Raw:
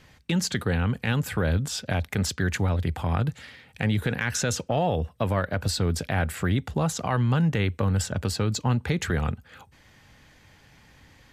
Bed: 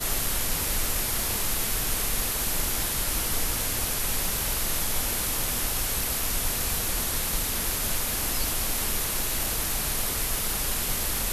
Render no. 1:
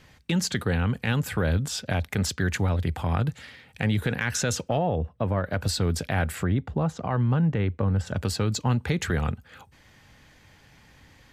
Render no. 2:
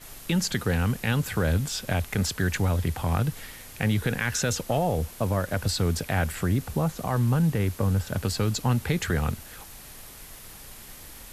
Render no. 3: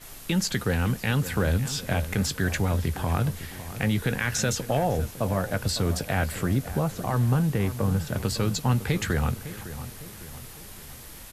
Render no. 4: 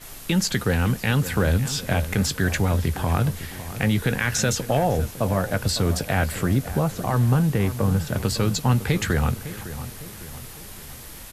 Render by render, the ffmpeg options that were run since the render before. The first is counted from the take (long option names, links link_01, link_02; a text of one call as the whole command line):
ffmpeg -i in.wav -filter_complex "[0:a]asettb=1/sr,asplit=3[link_01][link_02][link_03];[link_01]atrim=end=4.774[link_04];[link_02]atrim=start=4.77:end=5.45,asetpts=PTS-STARTPTS,afade=type=in:duration=0.004:curve=qsin,afade=type=out:start_time=0.676:duration=0.004:curve=qsin,lowpass=frequency=1100:poles=1[link_05];[link_03]atrim=start=5.446[link_06];[link_04][link_05]acrossfade=duration=0.004:curve1=hsin:curve2=qsin[link_07];[link_07][link_06]acrossfade=duration=0.004:curve1=qsin:curve2=hsin,asplit=3[link_08][link_09][link_10];[link_08]afade=type=out:start_time=6.43:duration=0.02[link_11];[link_09]lowpass=frequency=1100:poles=1,afade=type=in:start_time=6.43:duration=0.02,afade=type=out:start_time=8.06:duration=0.02[link_12];[link_10]afade=type=in:start_time=8.06:duration=0.02[link_13];[link_11][link_12][link_13]amix=inputs=3:normalize=0" out.wav
ffmpeg -i in.wav -i bed.wav -filter_complex "[1:a]volume=-17dB[link_01];[0:a][link_01]amix=inputs=2:normalize=0" out.wav
ffmpeg -i in.wav -filter_complex "[0:a]asplit=2[link_01][link_02];[link_02]adelay=15,volume=-12.5dB[link_03];[link_01][link_03]amix=inputs=2:normalize=0,asplit=2[link_04][link_05];[link_05]adelay=556,lowpass=frequency=2000:poles=1,volume=-13dB,asplit=2[link_06][link_07];[link_07]adelay=556,lowpass=frequency=2000:poles=1,volume=0.51,asplit=2[link_08][link_09];[link_09]adelay=556,lowpass=frequency=2000:poles=1,volume=0.51,asplit=2[link_10][link_11];[link_11]adelay=556,lowpass=frequency=2000:poles=1,volume=0.51,asplit=2[link_12][link_13];[link_13]adelay=556,lowpass=frequency=2000:poles=1,volume=0.51[link_14];[link_04][link_06][link_08][link_10][link_12][link_14]amix=inputs=6:normalize=0" out.wav
ffmpeg -i in.wav -af "volume=3.5dB" out.wav